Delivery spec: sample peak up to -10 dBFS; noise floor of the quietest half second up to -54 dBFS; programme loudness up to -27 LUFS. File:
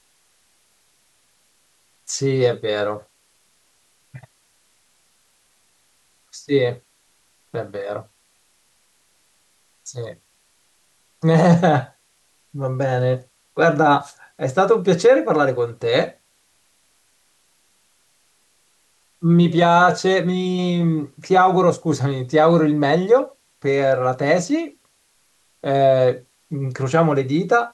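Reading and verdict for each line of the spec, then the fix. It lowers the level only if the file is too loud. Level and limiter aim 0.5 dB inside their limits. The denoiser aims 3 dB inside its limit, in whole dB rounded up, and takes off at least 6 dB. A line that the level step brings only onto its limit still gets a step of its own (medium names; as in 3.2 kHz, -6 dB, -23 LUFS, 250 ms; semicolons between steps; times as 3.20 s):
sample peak -5.0 dBFS: fail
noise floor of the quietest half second -62 dBFS: pass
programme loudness -18.5 LUFS: fail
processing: trim -9 dB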